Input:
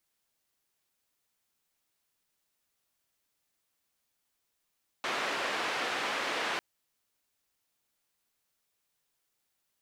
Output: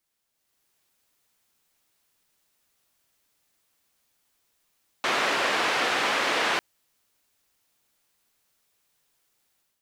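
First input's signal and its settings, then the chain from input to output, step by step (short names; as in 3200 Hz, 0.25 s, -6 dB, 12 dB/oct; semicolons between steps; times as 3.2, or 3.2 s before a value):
noise band 340–2300 Hz, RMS -33 dBFS 1.55 s
AGC gain up to 8 dB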